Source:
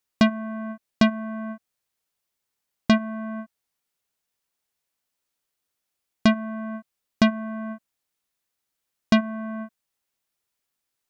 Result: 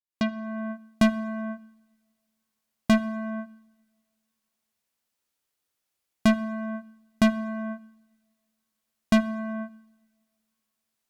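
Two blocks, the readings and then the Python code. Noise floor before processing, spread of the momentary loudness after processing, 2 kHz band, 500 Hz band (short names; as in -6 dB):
-82 dBFS, 13 LU, -2.5 dB, -1.5 dB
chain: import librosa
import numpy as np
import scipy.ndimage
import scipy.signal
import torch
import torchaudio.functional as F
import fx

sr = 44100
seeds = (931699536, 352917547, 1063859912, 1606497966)

y = fx.fade_in_head(x, sr, length_s=0.6)
y = fx.clip_asym(y, sr, top_db=-17.0, bottom_db=-14.0)
y = fx.rev_double_slope(y, sr, seeds[0], early_s=0.94, late_s=2.6, knee_db=-21, drr_db=17.5)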